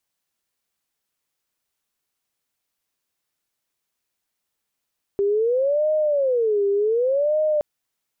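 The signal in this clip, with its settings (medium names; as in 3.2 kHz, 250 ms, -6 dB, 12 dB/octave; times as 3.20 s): siren wail 399–618 Hz 0.67 per s sine -17 dBFS 2.42 s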